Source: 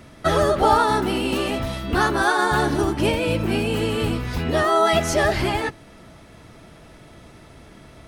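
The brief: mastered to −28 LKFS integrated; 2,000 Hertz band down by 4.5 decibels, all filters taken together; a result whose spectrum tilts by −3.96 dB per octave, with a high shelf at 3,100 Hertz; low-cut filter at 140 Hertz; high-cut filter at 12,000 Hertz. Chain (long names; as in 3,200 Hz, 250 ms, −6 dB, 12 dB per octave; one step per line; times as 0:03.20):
high-pass filter 140 Hz
low-pass filter 12,000 Hz
parametric band 2,000 Hz −8.5 dB
high-shelf EQ 3,100 Hz +6.5 dB
level −6.5 dB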